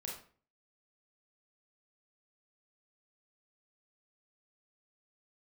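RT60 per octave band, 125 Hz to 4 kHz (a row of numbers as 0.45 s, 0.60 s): 0.55 s, 0.50 s, 0.45 s, 0.40 s, 0.40 s, 0.35 s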